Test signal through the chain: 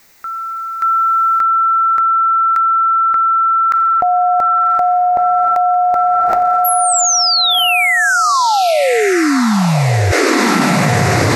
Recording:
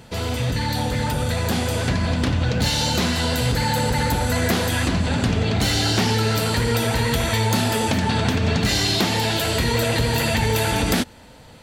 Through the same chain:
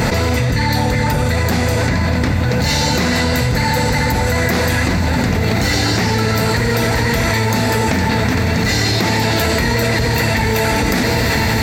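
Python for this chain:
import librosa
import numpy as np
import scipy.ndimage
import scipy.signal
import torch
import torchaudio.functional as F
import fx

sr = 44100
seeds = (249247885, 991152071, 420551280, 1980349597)

y = fx.graphic_eq_31(x, sr, hz=(2000, 3150, 10000), db=(6, -10, -10))
y = fx.echo_diffused(y, sr, ms=1163, feedback_pct=64, wet_db=-9.0)
y = fx.env_flatten(y, sr, amount_pct=100)
y = y * librosa.db_to_amplitude(1.0)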